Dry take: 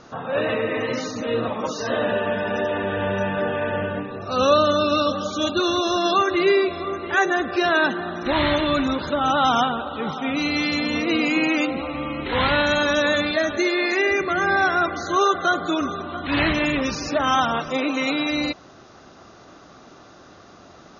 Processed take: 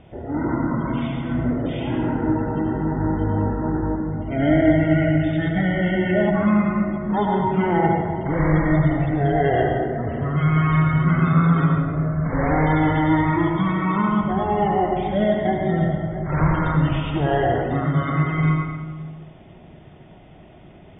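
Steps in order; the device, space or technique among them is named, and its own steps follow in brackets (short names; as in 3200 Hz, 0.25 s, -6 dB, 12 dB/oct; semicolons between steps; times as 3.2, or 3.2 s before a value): monster voice (pitch shift -11 st; low shelf 170 Hz +7 dB; reverb RT60 1.5 s, pre-delay 76 ms, DRR 0.5 dB); gain -3.5 dB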